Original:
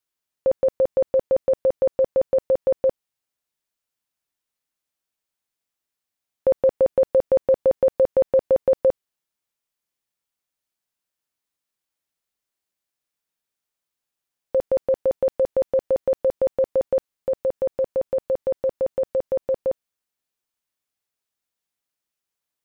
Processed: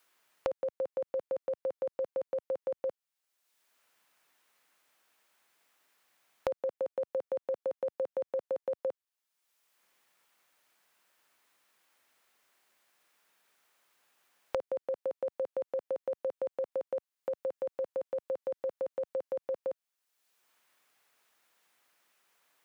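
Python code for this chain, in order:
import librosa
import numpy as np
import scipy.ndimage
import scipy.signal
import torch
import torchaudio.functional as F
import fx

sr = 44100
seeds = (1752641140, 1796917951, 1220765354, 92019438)

y = fx.highpass(x, sr, hz=800.0, slope=6)
y = fx.band_squash(y, sr, depth_pct=100)
y = y * librosa.db_to_amplitude(-9.0)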